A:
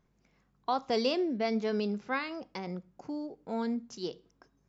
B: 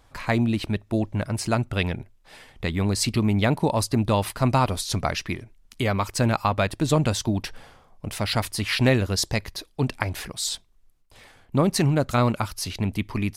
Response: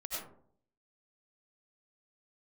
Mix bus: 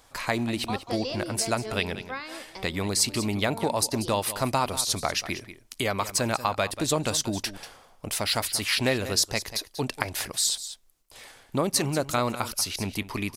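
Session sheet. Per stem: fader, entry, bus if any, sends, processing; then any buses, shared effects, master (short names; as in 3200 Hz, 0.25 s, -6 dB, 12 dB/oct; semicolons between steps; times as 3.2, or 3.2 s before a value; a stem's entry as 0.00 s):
-2.0 dB, 0.00 s, no send, echo send -13 dB, dry
+2.0 dB, 0.00 s, no send, echo send -15 dB, dry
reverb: off
echo: echo 0.188 s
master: tone controls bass -9 dB, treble +7 dB; compressor 1.5:1, threshold -29 dBFS, peak gain reduction 6 dB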